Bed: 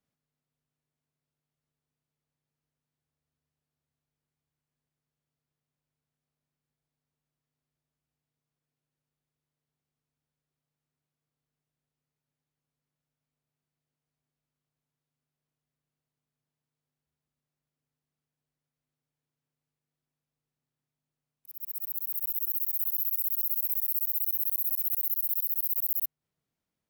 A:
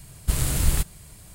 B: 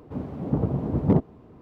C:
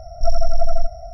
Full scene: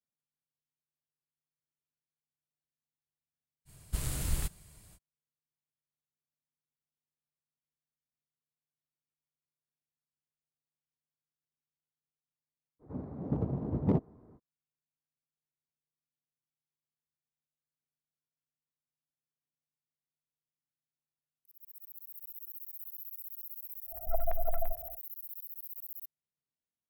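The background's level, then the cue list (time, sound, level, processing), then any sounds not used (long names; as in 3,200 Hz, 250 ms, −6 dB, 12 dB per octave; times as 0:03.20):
bed −15.5 dB
0:03.65: mix in A −11 dB, fades 0.05 s
0:12.79: mix in B −8 dB, fades 0.05 s + adaptive Wiener filter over 15 samples
0:23.86: mix in C −16 dB, fades 0.10 s + auto-filter low-pass square 8.8 Hz 700–1,900 Hz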